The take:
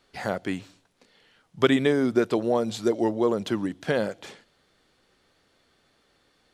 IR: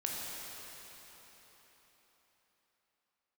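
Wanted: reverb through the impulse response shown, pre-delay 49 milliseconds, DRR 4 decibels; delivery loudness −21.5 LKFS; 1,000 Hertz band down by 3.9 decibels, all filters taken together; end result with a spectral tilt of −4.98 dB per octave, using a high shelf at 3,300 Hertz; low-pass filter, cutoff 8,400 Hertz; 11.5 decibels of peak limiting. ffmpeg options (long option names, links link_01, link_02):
-filter_complex "[0:a]lowpass=8400,equalizer=frequency=1000:width_type=o:gain=-6.5,highshelf=frequency=3300:gain=8.5,alimiter=limit=-17dB:level=0:latency=1,asplit=2[link_01][link_02];[1:a]atrim=start_sample=2205,adelay=49[link_03];[link_02][link_03]afir=irnorm=-1:irlink=0,volume=-7.5dB[link_04];[link_01][link_04]amix=inputs=2:normalize=0,volume=6dB"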